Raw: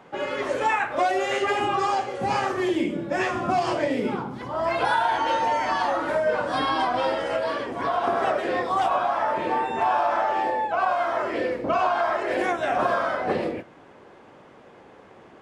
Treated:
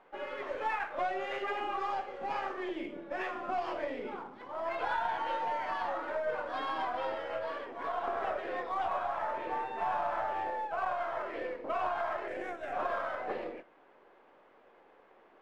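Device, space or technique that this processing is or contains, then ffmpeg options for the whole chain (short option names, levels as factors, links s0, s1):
crystal radio: -filter_complex "[0:a]highpass=380,lowpass=3000,aeval=exprs='if(lt(val(0),0),0.708*val(0),val(0))':c=same,asettb=1/sr,asplit=3[s0][s1][s2];[s0]atrim=end=12.284[s3];[s1]atrim=start=12.28:end=12.73,asetpts=PTS-STARTPTS,afade=t=in:d=0.004:c=qsin,afade=t=out:st=0.446:d=0.004:c=qsin,equalizer=f=1000:t=o:w=1:g=-9,equalizer=f=4000:t=o:w=1:g=-8,equalizer=f=8000:t=o:w=1:g=6[s4];[s2]atrim=start=12.726[s5];[s3][s4]acrossfade=d=0.004:c1=hsin:c2=qsin[s6];[s6][s5]acrossfade=d=0.004:c1=qsin:c2=hsin,volume=0.355"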